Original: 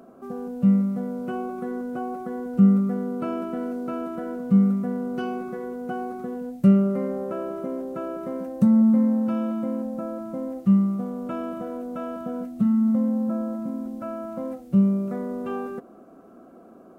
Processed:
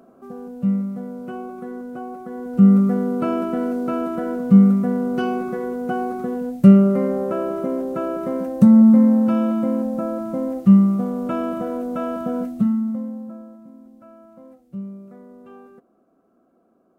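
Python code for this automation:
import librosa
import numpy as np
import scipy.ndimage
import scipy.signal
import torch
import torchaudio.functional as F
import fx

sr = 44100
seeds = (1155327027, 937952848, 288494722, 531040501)

y = fx.gain(x, sr, db=fx.line((2.25, -2.0), (2.81, 6.5), (12.49, 6.5), (12.87, -3.5), (13.59, -13.5)))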